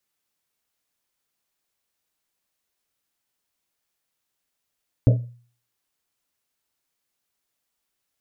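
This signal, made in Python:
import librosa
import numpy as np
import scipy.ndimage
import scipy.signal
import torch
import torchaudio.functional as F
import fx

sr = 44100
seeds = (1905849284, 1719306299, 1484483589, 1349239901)

y = fx.risset_drum(sr, seeds[0], length_s=1.1, hz=120.0, decay_s=0.46, noise_hz=530.0, noise_width_hz=190.0, noise_pct=20)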